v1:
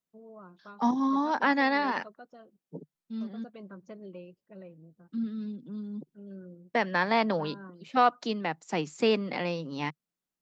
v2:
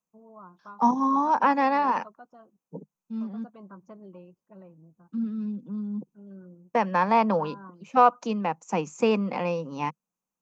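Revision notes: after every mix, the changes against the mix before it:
second voice: add graphic EQ with 31 bands 200 Hz +7 dB, 500 Hz +11 dB, 2.5 kHz +11 dB, 6.3 kHz +11 dB; master: add graphic EQ 500/1000/2000/4000 Hz -6/+11/-8/-10 dB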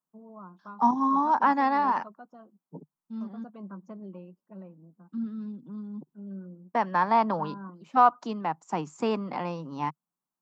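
first voice: add resonant low shelf 150 Hz -8 dB, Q 3; second voice: add graphic EQ with 31 bands 200 Hz -7 dB, 500 Hz -11 dB, 2.5 kHz -11 dB, 6.3 kHz -11 dB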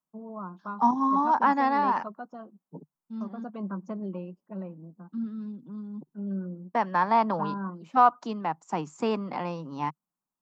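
first voice +7.5 dB

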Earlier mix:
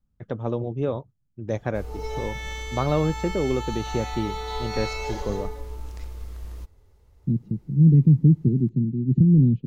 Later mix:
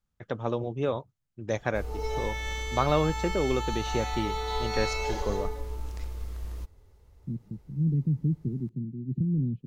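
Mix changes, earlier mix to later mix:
first voice: add tilt shelf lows -5.5 dB, about 690 Hz; second voice -11.0 dB

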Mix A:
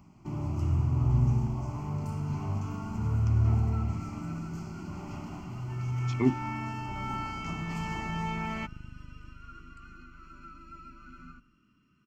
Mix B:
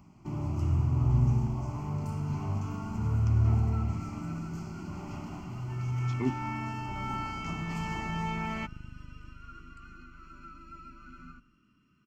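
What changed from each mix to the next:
speech -5.5 dB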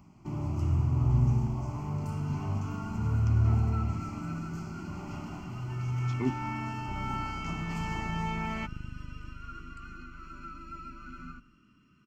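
second sound +4.5 dB

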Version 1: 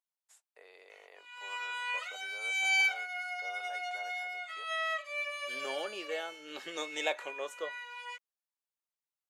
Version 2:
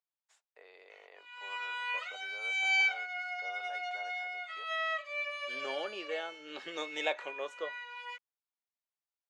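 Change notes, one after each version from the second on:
master: add low-pass 4.8 kHz 12 dB/octave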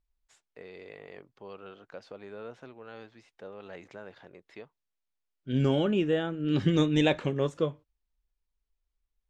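background: muted; master: remove ladder high-pass 510 Hz, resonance 25%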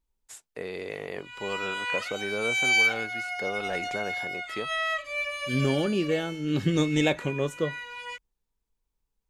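first voice +11.0 dB; background: unmuted; master: remove low-pass 4.8 kHz 12 dB/octave

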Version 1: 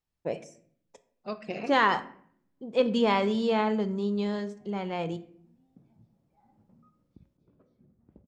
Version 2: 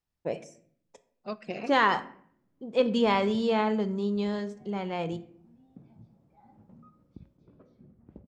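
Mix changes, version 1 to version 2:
second voice: send -7.5 dB; background +7.0 dB

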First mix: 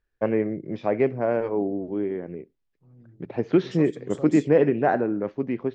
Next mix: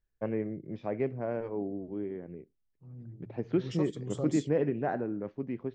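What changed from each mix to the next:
first voice -11.5 dB; master: add bass shelf 190 Hz +9 dB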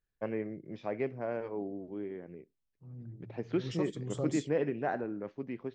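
first voice: add tilt EQ +2 dB/octave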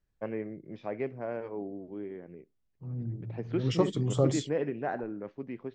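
second voice +10.5 dB; master: add treble shelf 6.4 kHz -8.5 dB

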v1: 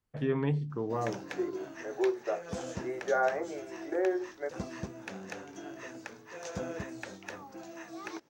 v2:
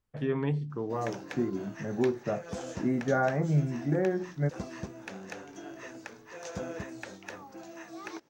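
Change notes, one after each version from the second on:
second voice: remove elliptic high-pass 350 Hz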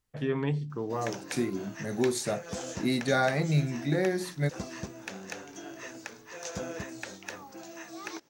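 second voice: remove low-pass 1.7 kHz 24 dB/octave; master: add treble shelf 2.9 kHz +8.5 dB

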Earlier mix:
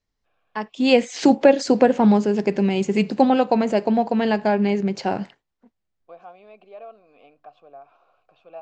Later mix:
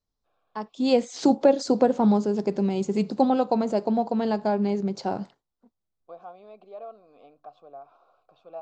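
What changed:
first voice -4.5 dB; master: add high-order bell 2.2 kHz -9.5 dB 1.1 oct

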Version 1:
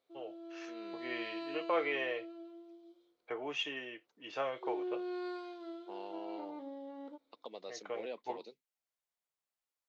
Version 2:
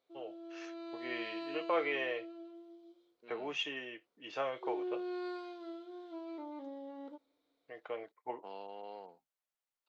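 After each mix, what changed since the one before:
second voice: entry +2.55 s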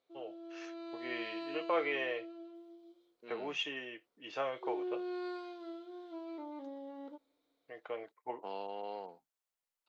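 second voice +5.0 dB

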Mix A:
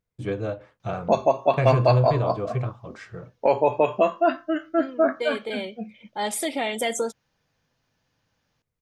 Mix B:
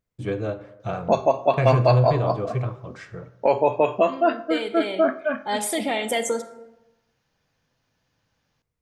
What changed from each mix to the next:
second voice: entry -0.70 s; reverb: on, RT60 0.95 s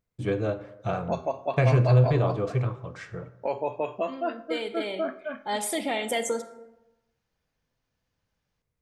second voice -3.5 dB; background -10.0 dB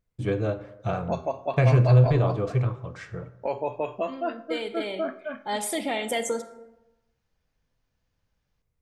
master: add bass shelf 66 Hz +10.5 dB

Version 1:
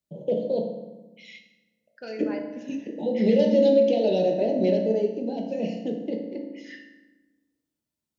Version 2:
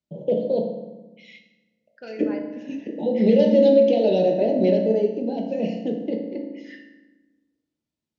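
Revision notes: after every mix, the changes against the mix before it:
first voice +3.5 dB; master: add distance through air 91 m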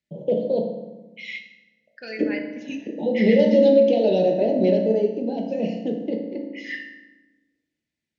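second voice: add resonant high shelf 1.5 kHz +8.5 dB, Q 3

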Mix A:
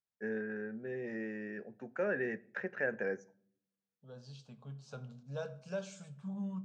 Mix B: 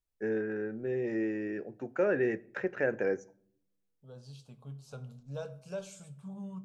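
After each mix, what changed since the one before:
first voice +5.5 dB; master: remove cabinet simulation 130–6900 Hz, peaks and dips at 210 Hz +6 dB, 320 Hz -9 dB, 1.7 kHz +6 dB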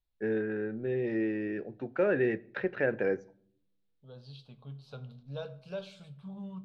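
first voice: add bass shelf 190 Hz +5.5 dB; master: add resonant high shelf 5.3 kHz -11 dB, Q 3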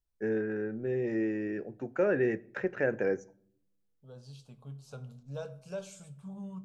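master: add resonant high shelf 5.3 kHz +11 dB, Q 3

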